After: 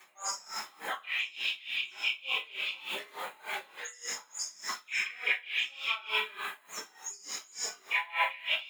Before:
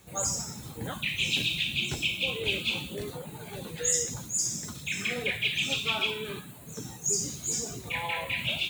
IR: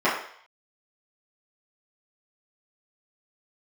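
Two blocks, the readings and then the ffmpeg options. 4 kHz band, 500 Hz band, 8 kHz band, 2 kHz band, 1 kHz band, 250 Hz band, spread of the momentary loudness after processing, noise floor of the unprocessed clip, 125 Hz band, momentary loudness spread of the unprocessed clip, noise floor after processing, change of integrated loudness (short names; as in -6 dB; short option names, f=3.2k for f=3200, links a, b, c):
-5.0 dB, -11.0 dB, -10.5 dB, -1.0 dB, +2.0 dB, -21.0 dB, 10 LU, -45 dBFS, under -30 dB, 13 LU, -60 dBFS, -4.5 dB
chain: -filter_complex "[0:a]highpass=1.3k,areverse,acompressor=threshold=-38dB:ratio=6,areverse[a];[1:a]atrim=start_sample=2205[b];[a][b]afir=irnorm=-1:irlink=0,aeval=exprs='val(0)*pow(10,-22*(0.5-0.5*cos(2*PI*3.4*n/s))/20)':c=same"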